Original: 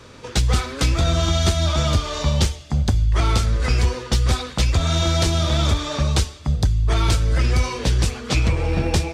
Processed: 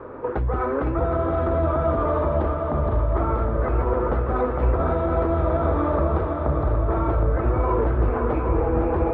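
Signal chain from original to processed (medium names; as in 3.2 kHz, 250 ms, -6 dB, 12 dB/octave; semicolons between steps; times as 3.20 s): low-pass 1.3 kHz 24 dB/octave; resonant low shelf 250 Hz -8.5 dB, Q 1.5; in parallel at +0.5 dB: compressor with a negative ratio -30 dBFS, ratio -1; on the sum: peak limiter -15.5 dBFS, peak gain reduction 8 dB; multi-head delay 255 ms, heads second and third, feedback 62%, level -7 dB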